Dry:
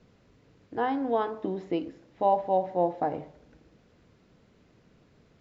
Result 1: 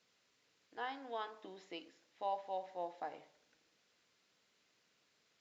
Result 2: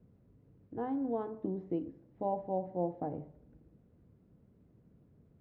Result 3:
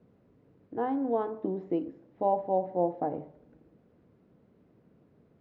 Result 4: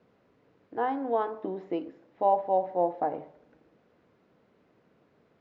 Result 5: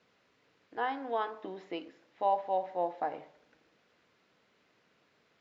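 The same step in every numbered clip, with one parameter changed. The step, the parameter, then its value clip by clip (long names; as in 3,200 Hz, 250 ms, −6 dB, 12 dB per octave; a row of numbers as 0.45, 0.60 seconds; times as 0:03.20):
resonant band-pass, frequency: 7,300, 100, 280, 740, 2,300 Hertz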